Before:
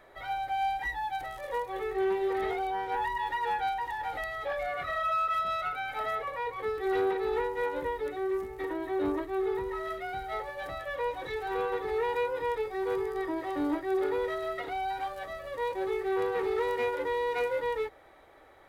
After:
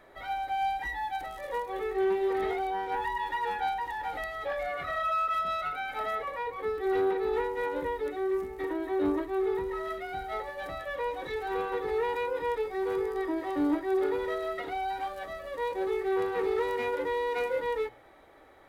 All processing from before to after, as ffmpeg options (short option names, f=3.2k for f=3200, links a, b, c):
-filter_complex "[0:a]asettb=1/sr,asplit=3[a][b][c];[a]atrim=end=6.424[d];[b]atrim=start=6.42:end=7.34,asetpts=PTS-STARTPTS,afade=t=in:d=0.004:c=qsin,afade=t=out:st=0.916:d=0.004:c=qsin,lowpass=f=1.5k:p=1,aemphasis=mode=production:type=75kf[e];[c]atrim=start=7.336[f];[d][e]acrossfade=d=0.004:c1=hsin:c2=qsin[g];[g][f]acrossfade=d=0.004:c1=qsin:c2=hsin,equalizer=f=240:t=o:w=1:g=4.5,bandreject=f=121.7:t=h:w=4,bandreject=f=243.4:t=h:w=4,bandreject=f=365.1:t=h:w=4,bandreject=f=486.8:t=h:w=4,bandreject=f=608.5:t=h:w=4,bandreject=f=730.2:t=h:w=4,bandreject=f=851.9:t=h:w=4,bandreject=f=973.6:t=h:w=4,bandreject=f=1.0953k:t=h:w=4,bandreject=f=1.217k:t=h:w=4,bandreject=f=1.3387k:t=h:w=4,bandreject=f=1.4604k:t=h:w=4,bandreject=f=1.5821k:t=h:w=4,bandreject=f=1.7038k:t=h:w=4,bandreject=f=1.8255k:t=h:w=4,bandreject=f=1.9472k:t=h:w=4,bandreject=f=2.0689k:t=h:w=4,bandreject=f=2.1906k:t=h:w=4,bandreject=f=2.3123k:t=h:w=4,bandreject=f=2.434k:t=h:w=4,bandreject=f=2.5557k:t=h:w=4,bandreject=f=2.6774k:t=h:w=4,bandreject=f=2.7991k:t=h:w=4,bandreject=f=2.9208k:t=h:w=4,bandreject=f=3.0425k:t=h:w=4,bandreject=f=3.1642k:t=h:w=4,bandreject=f=3.2859k:t=h:w=4,bandreject=f=3.4076k:t=h:w=4,bandreject=f=3.5293k:t=h:w=4,bandreject=f=3.651k:t=h:w=4,bandreject=f=3.7727k:t=h:w=4,bandreject=f=3.8944k:t=h:w=4,bandreject=f=4.0161k:t=h:w=4,bandreject=f=4.1378k:t=h:w=4"